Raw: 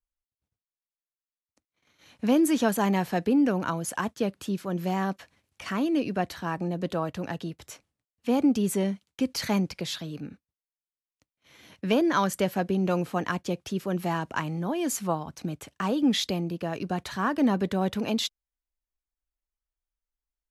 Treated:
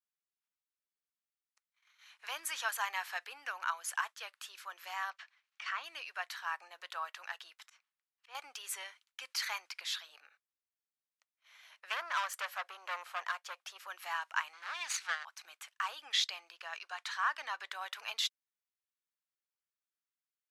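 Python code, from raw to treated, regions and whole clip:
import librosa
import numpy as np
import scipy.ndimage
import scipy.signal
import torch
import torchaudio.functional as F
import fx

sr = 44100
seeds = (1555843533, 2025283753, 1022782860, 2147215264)

y = fx.chain(x, sr, fx.lowpass(hz=5100.0, slope=12),
    fx.notch(hz=980.0, q=22.0), at=(5.1, 5.84))
y = fx.chain(y, sr, fx.auto_swell(attack_ms=168.0),
    fx.air_absorb(metres=67.0), at=(7.66, 8.35))
y = fx.chain(y, sr, fx.highpass(hz=210.0, slope=24),
    fx.peak_eq(hz=610.0, db=10.0, octaves=0.89),
    fx.tube_stage(drive_db=22.0, bias=0.55), at=(10.08, 13.87))
y = fx.chain(y, sr, fx.lower_of_two(delay_ms=0.48),
    fx.lowpass(hz=5200.0, slope=12),
    fx.high_shelf(hz=3600.0, db=11.5), at=(14.53, 15.25))
y = fx.chain(y, sr, fx.lowpass(hz=7400.0, slope=12),
    fx.high_shelf(hz=5700.0, db=5.0), at=(16.12, 17.72))
y = scipy.signal.sosfilt(scipy.signal.cheby2(4, 80, 190.0, 'highpass', fs=sr, output='sos'), y)
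y = fx.high_shelf(y, sr, hz=3700.0, db=-6.5)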